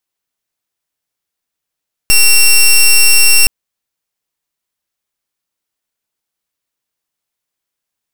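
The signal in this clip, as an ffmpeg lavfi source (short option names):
-f lavfi -i "aevalsrc='0.501*(2*lt(mod(2730*t,1),0.13)-1)':d=1.37:s=44100"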